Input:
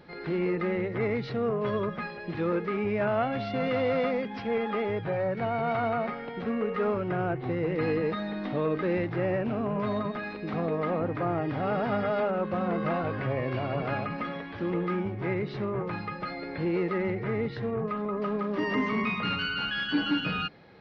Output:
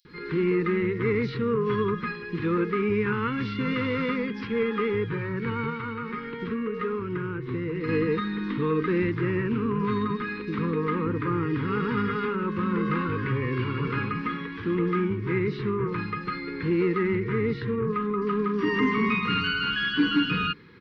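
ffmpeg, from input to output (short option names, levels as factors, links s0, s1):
-filter_complex "[0:a]asettb=1/sr,asplit=3[s0][s1][s2];[s0]atrim=end=5.644[s3];[s1]atrim=start=5.64:end=7.84,asetpts=PTS-STARTPTS,afade=t=in:d=0.004:c=qsin,afade=t=out:st=2.196:d=0.004:c=qsin,acompressor=threshold=0.0316:ratio=6[s4];[s2]atrim=start=7.836[s5];[s3][s4]acrossfade=d=0.004:c1=hsin:c2=qsin[s6];[s6][s5]acrossfade=d=0.004:c1=qsin:c2=hsin,asuperstop=centerf=670:order=8:qfactor=1.4,acrossover=split=4900[s7][s8];[s7]adelay=50[s9];[s9][s8]amix=inputs=2:normalize=0,volume=1.68"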